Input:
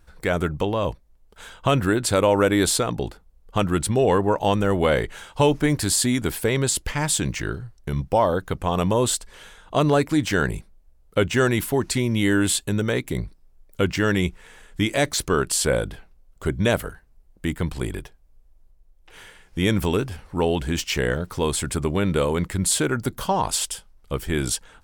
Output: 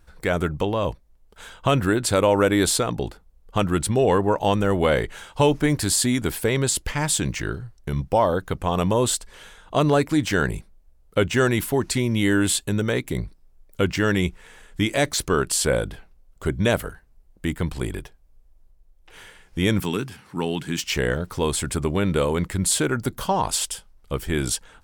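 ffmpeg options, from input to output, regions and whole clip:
-filter_complex "[0:a]asettb=1/sr,asplit=3[s0][s1][s2];[s0]atrim=end=19.804[s3];[s1]atrim=start=19.8:end=20.84,asetpts=PTS-STARTPTS,afade=t=in:d=0.004:c=qsin,afade=t=out:st=1.036:d=0.004:c=qsin,highpass=f=130:w=0.5412,highpass=f=130:w=1.3066,equalizer=f=580:w=1.5:g=-10.5,acompressor=mode=upward:threshold=0.00708:ratio=2.5:attack=3.2:release=140:knee=2.83:detection=peak[s4];[s2]atrim=start=20.836[s5];[s3][s4]acrossfade=d=0.004:c1=hsin:c2=qsin[s6];[s6][s5]acrossfade=d=0.004:c1=qsin:c2=hsin"

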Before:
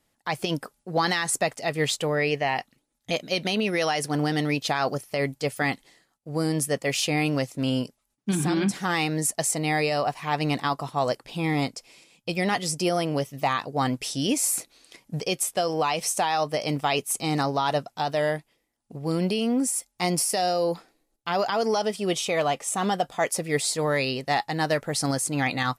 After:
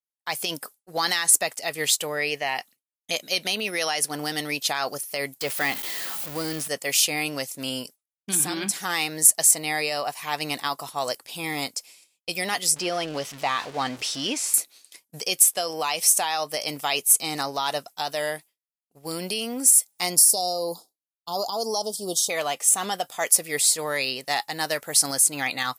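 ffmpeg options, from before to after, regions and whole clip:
-filter_complex "[0:a]asettb=1/sr,asplit=3[s0][s1][s2];[s0]atrim=end=5.414[s3];[s1]atrim=start=5.41:end=6.68,asetpts=PTS-STARTPTS,afade=t=in:d=0.004:c=qsin,afade=t=out:st=1.266:d=0.004:c=qsin,aeval=exprs='val(0)+0.5*0.0355*sgn(val(0))':c=same,acrossover=split=4400[s4][s5];[s5]acompressor=threshold=0.00447:ratio=4:attack=1:release=60[s6];[s4][s6]amix=inputs=2:normalize=0[s7];[s2]atrim=start=6.676[s8];[s3][s7]acrossfade=d=0.004:c1=hsin:c2=qsin[s9];[s9][s8]acrossfade=d=0.004:c1=qsin:c2=hsin,asettb=1/sr,asplit=3[s10][s11][s12];[s10]atrim=end=12.764[s13];[s11]atrim=start=12.76:end=14.54,asetpts=PTS-STARTPTS,afade=t=in:d=0.004:c=qsin,afade=t=out:st=1.776:d=0.004:c=qsin,aeval=exprs='val(0)+0.5*0.0266*sgn(val(0))':c=same,lowpass=4300[s14];[s12]atrim=start=14.536[s15];[s13][s14]acrossfade=d=0.004:c1=hsin:c2=qsin[s16];[s16][s15]acrossfade=d=0.004:c1=qsin:c2=hsin,asettb=1/sr,asplit=3[s17][s18][s19];[s17]atrim=end=20.164[s20];[s18]atrim=start=20.16:end=22.3,asetpts=PTS-STARTPTS,afade=t=in:d=0.004:c=qsin,afade=t=out:st=2.136:d=0.004:c=qsin,asuperstop=centerf=2000:order=8:qfactor=0.77,lowshelf=f=170:g=5[s21];[s19]atrim=start=22.296[s22];[s20][s21]acrossfade=d=0.004:c1=hsin:c2=qsin[s23];[s23][s22]acrossfade=d=0.004:c1=qsin:c2=hsin,aemphasis=mode=production:type=riaa,agate=range=0.0224:threshold=0.0141:ratio=3:detection=peak,adynamicequalizer=threshold=0.0282:dfrequency=4500:dqfactor=0.7:tfrequency=4500:tqfactor=0.7:attack=5:release=100:ratio=0.375:range=2.5:mode=cutabove:tftype=highshelf,volume=0.794"

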